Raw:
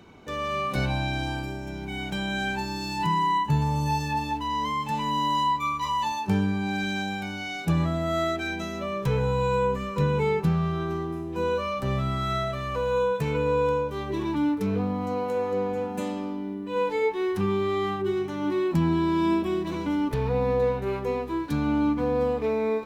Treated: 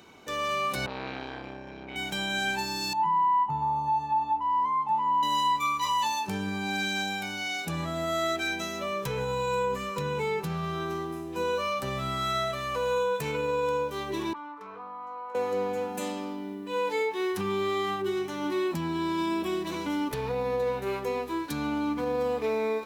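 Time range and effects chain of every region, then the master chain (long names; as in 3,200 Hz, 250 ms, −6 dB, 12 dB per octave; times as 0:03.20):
0:00.86–0:01.96: high-frequency loss of the air 260 metres + saturating transformer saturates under 890 Hz
0:02.93–0:05.23: Savitzky-Golay smoothing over 65 samples + low shelf with overshoot 650 Hz −7 dB, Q 3
0:14.33–0:15.35: resonant band-pass 1,100 Hz, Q 4.1 + envelope flattener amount 50%
whole clip: high-shelf EQ 4,100 Hz +8.5 dB; brickwall limiter −18.5 dBFS; low-shelf EQ 210 Hz −11.5 dB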